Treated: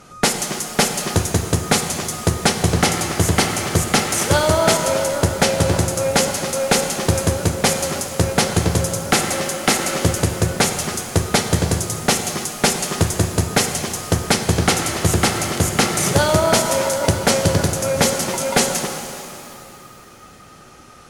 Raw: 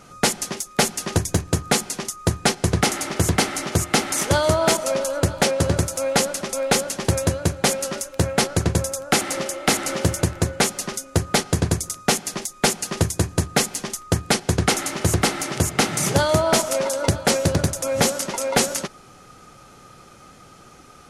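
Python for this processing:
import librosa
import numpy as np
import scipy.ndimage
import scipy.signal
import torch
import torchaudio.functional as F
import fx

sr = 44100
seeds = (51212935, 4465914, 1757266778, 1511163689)

y = fx.cheby_harmonics(x, sr, harmonics=(2,), levels_db=(-18,), full_scale_db=-6.0)
y = fx.rev_shimmer(y, sr, seeds[0], rt60_s=2.6, semitones=7, shimmer_db=-8, drr_db=5.5)
y = y * 10.0 ** (2.0 / 20.0)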